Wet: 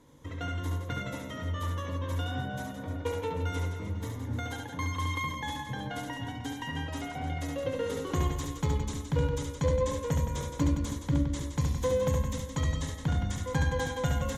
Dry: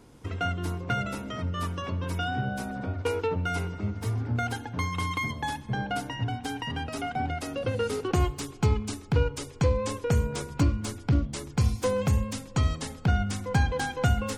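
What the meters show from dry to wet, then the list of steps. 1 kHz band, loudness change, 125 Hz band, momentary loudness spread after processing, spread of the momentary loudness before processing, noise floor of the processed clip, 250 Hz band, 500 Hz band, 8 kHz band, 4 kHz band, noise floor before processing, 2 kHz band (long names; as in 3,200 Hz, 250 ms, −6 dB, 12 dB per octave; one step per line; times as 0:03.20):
−5.0 dB, −3.0 dB, −3.5 dB, 7 LU, 6 LU, −41 dBFS, −2.5 dB, −2.0 dB, −2.5 dB, −3.5 dB, −45 dBFS, −5.0 dB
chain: harmonic generator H 2 −17 dB, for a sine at −11.5 dBFS
EQ curve with evenly spaced ripples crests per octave 1.1, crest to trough 9 dB
reverse bouncing-ball delay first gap 70 ms, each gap 1.4×, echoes 5
level −6.5 dB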